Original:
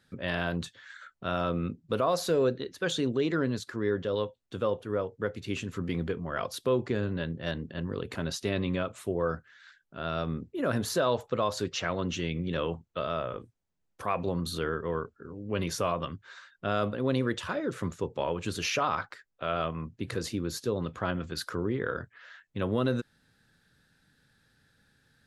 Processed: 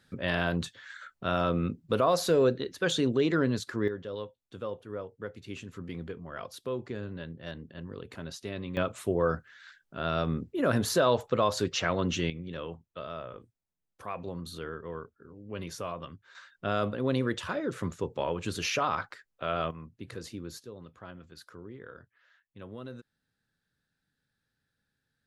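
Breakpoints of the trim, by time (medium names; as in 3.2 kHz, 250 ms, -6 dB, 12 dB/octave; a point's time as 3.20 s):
+2 dB
from 3.88 s -7.5 dB
from 8.77 s +2.5 dB
from 12.30 s -7.5 dB
from 16.35 s -0.5 dB
from 19.71 s -8 dB
from 20.63 s -15 dB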